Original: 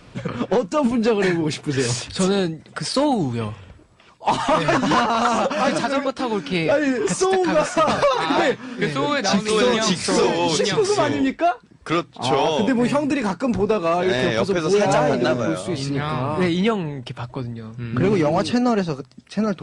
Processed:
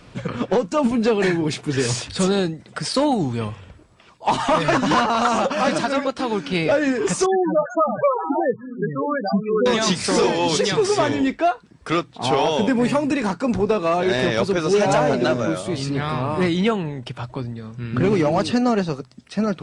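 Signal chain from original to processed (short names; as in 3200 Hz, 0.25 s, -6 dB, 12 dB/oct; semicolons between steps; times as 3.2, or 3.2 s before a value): 7.26–9.66 loudest bins only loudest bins 8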